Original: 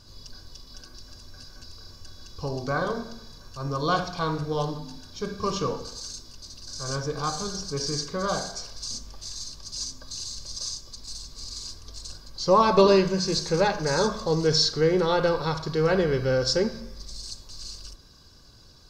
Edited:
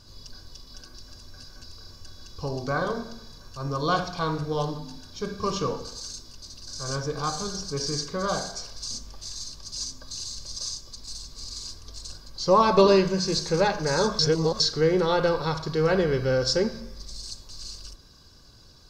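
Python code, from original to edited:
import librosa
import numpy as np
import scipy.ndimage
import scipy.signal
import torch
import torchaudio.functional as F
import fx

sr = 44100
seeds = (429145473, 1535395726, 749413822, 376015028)

y = fx.edit(x, sr, fx.reverse_span(start_s=14.19, length_s=0.41), tone=tone)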